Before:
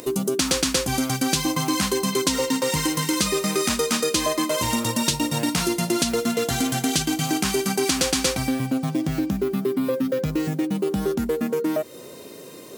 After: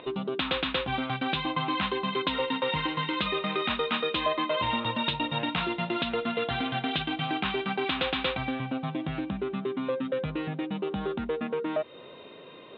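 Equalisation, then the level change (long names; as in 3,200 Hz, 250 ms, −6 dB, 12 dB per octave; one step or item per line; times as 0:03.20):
Chebyshev low-pass with heavy ripple 3,800 Hz, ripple 3 dB
low-shelf EQ 150 Hz −6 dB
parametric band 320 Hz −5.5 dB 1.6 octaves
0.0 dB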